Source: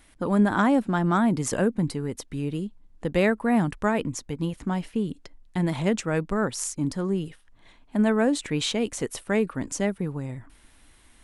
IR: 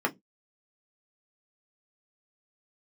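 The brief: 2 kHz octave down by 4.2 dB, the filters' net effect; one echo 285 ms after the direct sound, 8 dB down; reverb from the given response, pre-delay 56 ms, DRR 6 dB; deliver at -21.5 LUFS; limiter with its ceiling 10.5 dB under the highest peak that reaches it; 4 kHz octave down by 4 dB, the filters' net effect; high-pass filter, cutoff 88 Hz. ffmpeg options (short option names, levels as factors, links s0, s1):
-filter_complex "[0:a]highpass=88,equalizer=f=2000:t=o:g=-5,equalizer=f=4000:t=o:g=-3.5,alimiter=limit=0.0794:level=0:latency=1,aecho=1:1:285:0.398,asplit=2[s0][s1];[1:a]atrim=start_sample=2205,adelay=56[s2];[s1][s2]afir=irnorm=-1:irlink=0,volume=0.158[s3];[s0][s3]amix=inputs=2:normalize=0,volume=2.66"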